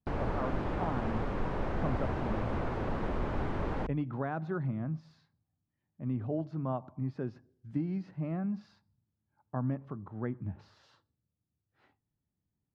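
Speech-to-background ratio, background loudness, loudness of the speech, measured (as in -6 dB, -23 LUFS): -2.0 dB, -35.5 LUFS, -37.5 LUFS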